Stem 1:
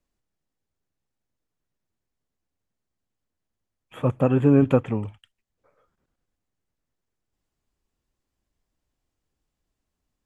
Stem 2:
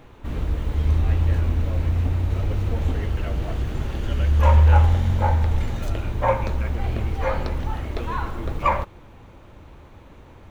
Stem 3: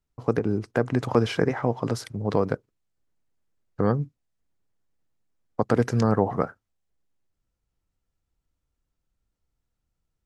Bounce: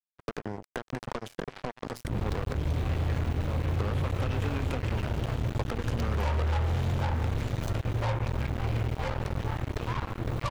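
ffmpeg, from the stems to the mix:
-filter_complex "[0:a]tiltshelf=f=970:g=-6,volume=0.596[s0];[1:a]equalizer=f=120:t=o:w=0.67:g=14,adelay=1800,volume=0.501[s1];[2:a]aeval=exprs='if(lt(val(0),0),0.447*val(0),val(0))':c=same,volume=1.26[s2];[s0][s2]amix=inputs=2:normalize=0,bandreject=f=60:t=h:w=6,bandreject=f=120:t=h:w=6,bandreject=f=180:t=h:w=6,bandreject=f=240:t=h:w=6,bandreject=f=300:t=h:w=6,acompressor=threshold=0.0631:ratio=16,volume=1[s3];[s1][s3]amix=inputs=2:normalize=0,lowshelf=f=79:g=-4,acrossover=split=140|1000[s4][s5][s6];[s4]acompressor=threshold=0.0355:ratio=4[s7];[s5]acompressor=threshold=0.0178:ratio=4[s8];[s6]acompressor=threshold=0.00794:ratio=4[s9];[s7][s8][s9]amix=inputs=3:normalize=0,acrusher=bits=4:mix=0:aa=0.5"

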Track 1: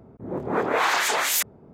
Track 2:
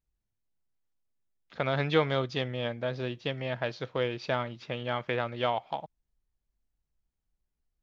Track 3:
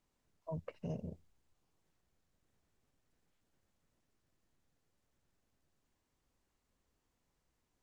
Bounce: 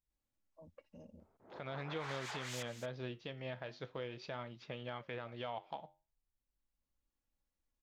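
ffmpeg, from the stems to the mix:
-filter_complex "[0:a]acrossover=split=580 7100:gain=0.126 1 0.0794[s0][s1][s2];[s0][s1][s2]amix=inputs=3:normalize=0,asoftclip=type=tanh:threshold=0.106,adelay=1200,volume=0.178,asplit=2[s3][s4];[s4]volume=0.251[s5];[1:a]flanger=delay=4.7:depth=6.1:regen=-79:speed=0.43:shape=sinusoidal,volume=0.631,asplit=2[s6][s7];[2:a]aecho=1:1:3.6:0.77,adelay=100,volume=0.188[s8];[s7]apad=whole_len=349615[s9];[s8][s9]sidechaincompress=threshold=0.00224:ratio=8:attack=16:release=981[s10];[s5]aecho=0:1:231:1[s11];[s3][s6][s10][s11]amix=inputs=4:normalize=0,alimiter=level_in=2.11:limit=0.0631:level=0:latency=1:release=232,volume=0.473"

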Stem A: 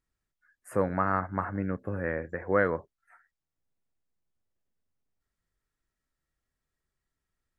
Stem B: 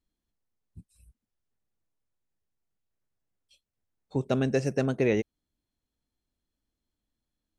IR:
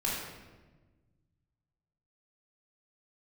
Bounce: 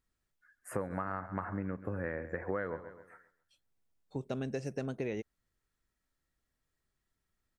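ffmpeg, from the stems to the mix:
-filter_complex "[0:a]volume=1.06,asplit=2[s0][s1];[s1]volume=0.133[s2];[1:a]volume=0.398[s3];[s2]aecho=0:1:133|266|399|532|665:1|0.32|0.102|0.0328|0.0105[s4];[s0][s3][s4]amix=inputs=3:normalize=0,acompressor=threshold=0.0251:ratio=8"

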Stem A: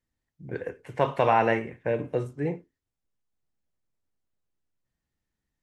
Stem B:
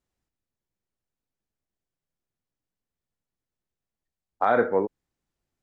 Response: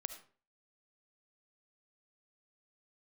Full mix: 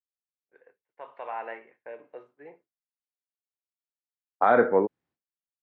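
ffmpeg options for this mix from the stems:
-filter_complex "[0:a]highpass=650,aemphasis=mode=reproduction:type=75kf,volume=0.355,afade=t=in:st=0.9:d=0.65:silence=0.375837[s0];[1:a]volume=1.19[s1];[s0][s1]amix=inputs=2:normalize=0,highpass=120,agate=range=0.0224:threshold=0.00141:ratio=3:detection=peak,lowpass=3000"

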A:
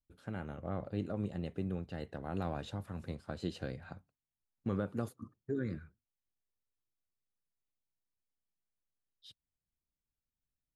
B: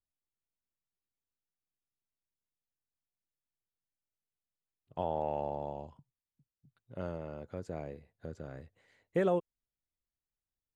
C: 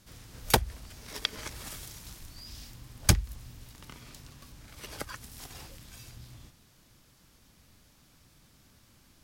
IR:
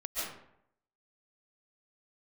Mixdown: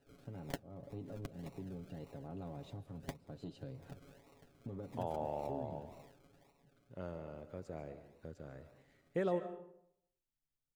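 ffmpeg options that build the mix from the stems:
-filter_complex "[0:a]equalizer=f=1600:t=o:w=1.5:g=-11.5,asoftclip=type=tanh:threshold=0.0501,highshelf=f=4100:g=-10,volume=0.596,asplit=3[s0][s1][s2];[s1]volume=0.0944[s3];[1:a]volume=0.447,asplit=2[s4][s5];[s5]volume=0.224[s6];[2:a]highpass=f=490:w=0.5412,highpass=f=490:w=1.3066,adynamicsmooth=sensitivity=6.5:basefreq=4200,acrusher=samples=38:mix=1:aa=0.000001:lfo=1:lforange=22.8:lforate=1.8,volume=0.596[s7];[s2]apad=whole_len=407328[s8];[s7][s8]sidechaincompress=threshold=0.00562:ratio=8:attack=37:release=318[s9];[s0][s9]amix=inputs=2:normalize=0,aecho=1:1:7.2:0.65,acompressor=threshold=0.00562:ratio=2.5,volume=1[s10];[3:a]atrim=start_sample=2205[s11];[s3][s6]amix=inputs=2:normalize=0[s12];[s12][s11]afir=irnorm=-1:irlink=0[s13];[s4][s10][s13]amix=inputs=3:normalize=0"

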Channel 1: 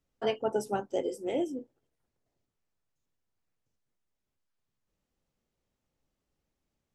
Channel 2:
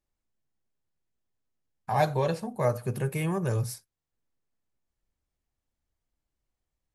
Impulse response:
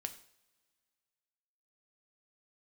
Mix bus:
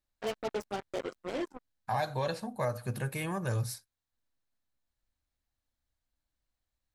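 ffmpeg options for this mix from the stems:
-filter_complex "[0:a]acrusher=bits=4:mix=0:aa=0.5,volume=0.531[s0];[1:a]equalizer=f=160:t=o:w=0.33:g=-8,equalizer=f=400:t=o:w=0.33:g=-9,equalizer=f=1600:t=o:w=0.33:g=4,equalizer=f=4000:t=o:w=0.33:g=7,alimiter=limit=0.112:level=0:latency=1:release=199,volume=0.794[s1];[s0][s1]amix=inputs=2:normalize=0"

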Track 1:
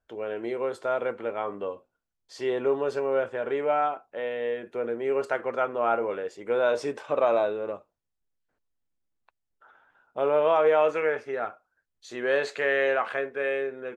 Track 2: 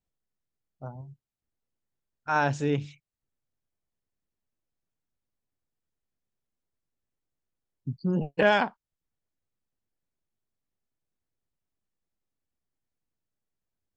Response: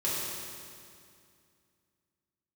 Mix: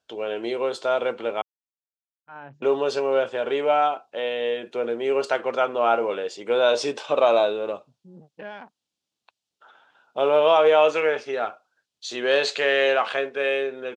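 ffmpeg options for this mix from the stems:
-filter_complex "[0:a]equalizer=f=760:w=1.5:g=2.5,aexciter=amount=3.6:drive=8.4:freq=2800,volume=1.41,asplit=3[s0][s1][s2];[s0]atrim=end=1.42,asetpts=PTS-STARTPTS,afade=t=out:st=1.416:d=0.004:c=hsin[s3];[s1]atrim=start=1.42:end=2.62,asetpts=PTS-STARTPTS,volume=0[s4];[s2]atrim=start=2.62,asetpts=PTS-STARTPTS,afade=t=in:d=0.004:c=hsin[s5];[s3][s4][s5]concat=n=3:v=0:a=1,asplit=2[s6][s7];[1:a]afwtdn=0.0112,volume=0.15[s8];[s7]apad=whole_len=620062[s9];[s8][s9]sidechaincompress=threshold=0.0126:ratio=8:attack=16:release=486[s10];[s6][s10]amix=inputs=2:normalize=0,highpass=140,lowpass=4200"

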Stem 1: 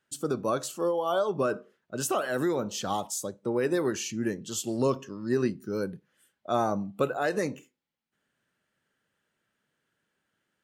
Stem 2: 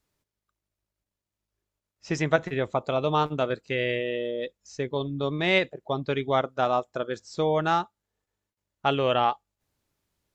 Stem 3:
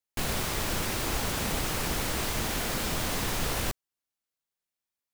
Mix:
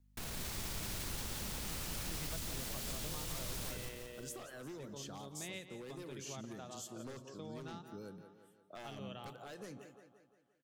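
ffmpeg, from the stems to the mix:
-filter_complex "[0:a]adelay=2250,volume=0.335,asplit=2[s0][s1];[s1]volume=0.106[s2];[1:a]volume=0.112,asplit=2[s3][s4];[s4]volume=0.224[s5];[2:a]alimiter=limit=0.0668:level=0:latency=1,aeval=exprs='val(0)+0.000562*(sin(2*PI*50*n/s)+sin(2*PI*2*50*n/s)/2+sin(2*PI*3*50*n/s)/3+sin(2*PI*4*50*n/s)/4+sin(2*PI*5*50*n/s)/5)':c=same,volume=0.891,asplit=2[s6][s7];[s7]volume=0.282[s8];[s0][s6]amix=inputs=2:normalize=0,aeval=exprs='0.0282*(abs(mod(val(0)/0.0282+3,4)-2)-1)':c=same,alimiter=level_in=4.47:limit=0.0631:level=0:latency=1:release=219,volume=0.224,volume=1[s9];[s2][s5][s8]amix=inputs=3:normalize=0,aecho=0:1:174|348|522|696|870|1044|1218:1|0.51|0.26|0.133|0.0677|0.0345|0.0176[s10];[s3][s9][s10]amix=inputs=3:normalize=0,acrossover=split=220|3000[s11][s12][s13];[s12]acompressor=threshold=0.00398:ratio=6[s14];[s11][s14][s13]amix=inputs=3:normalize=0"

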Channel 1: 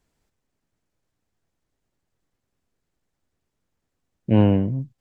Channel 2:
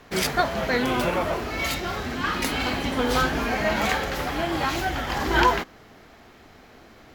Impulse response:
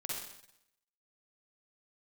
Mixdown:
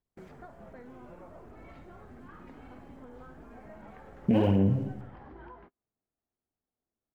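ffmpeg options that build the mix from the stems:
-filter_complex "[0:a]aphaser=in_gain=1:out_gain=1:delay=5:decay=0.71:speed=1.3:type=sinusoidal,alimiter=limit=0.211:level=0:latency=1:release=65,volume=1.19,asplit=2[s0][s1];[s1]volume=0.531[s2];[1:a]lowpass=1300,lowshelf=f=370:g=5.5,acompressor=threshold=0.0355:ratio=6,adelay=50,volume=0.126,asplit=2[s3][s4];[s4]volume=0.211[s5];[2:a]atrim=start_sample=2205[s6];[s2][s5]amix=inputs=2:normalize=0[s7];[s7][s6]afir=irnorm=-1:irlink=0[s8];[s0][s3][s8]amix=inputs=3:normalize=0,lowshelf=f=92:g=-2.5,agate=range=0.0355:threshold=0.00251:ratio=16:detection=peak,acompressor=threshold=0.0562:ratio=2"

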